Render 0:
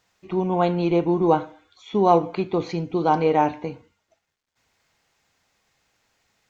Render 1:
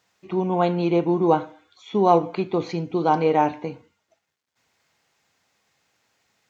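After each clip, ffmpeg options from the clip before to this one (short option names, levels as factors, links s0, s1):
-af "highpass=100"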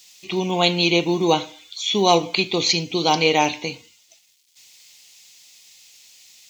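-af "aexciter=amount=10.8:drive=5.8:freq=2300"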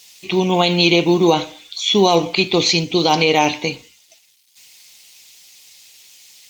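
-af "alimiter=level_in=2.51:limit=0.891:release=50:level=0:latency=1,volume=0.841" -ar 48000 -c:a libopus -b:a 32k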